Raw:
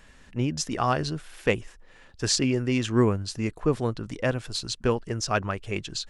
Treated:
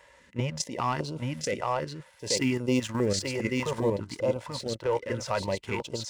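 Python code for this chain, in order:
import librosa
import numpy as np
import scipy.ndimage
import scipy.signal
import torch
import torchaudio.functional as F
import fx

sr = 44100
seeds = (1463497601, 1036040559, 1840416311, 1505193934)

p1 = scipy.signal.sosfilt(scipy.signal.butter(4, 41.0, 'highpass', fs=sr, output='sos'), x)
p2 = fx.small_body(p1, sr, hz=(550.0, 920.0, 2000.0), ring_ms=35, db=13)
p3 = fx.rider(p2, sr, range_db=4, speed_s=2.0)
p4 = fx.low_shelf(p3, sr, hz=91.0, db=-12.0)
p5 = fx.leveller(p4, sr, passes=1)
p6 = fx.level_steps(p5, sr, step_db=11)
p7 = fx.high_shelf(p6, sr, hz=6800.0, db=11.0, at=(2.35, 3.06))
p8 = p7 + fx.echo_single(p7, sr, ms=835, db=-3.5, dry=0)
p9 = fx.hpss(p8, sr, part='percussive', gain_db=-5)
y = fx.filter_held_notch(p9, sr, hz=5.0, low_hz=220.0, high_hz=1800.0)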